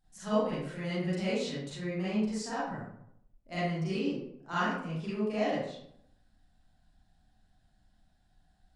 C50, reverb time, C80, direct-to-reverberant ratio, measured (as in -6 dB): -3.0 dB, 0.70 s, 2.0 dB, -11.5 dB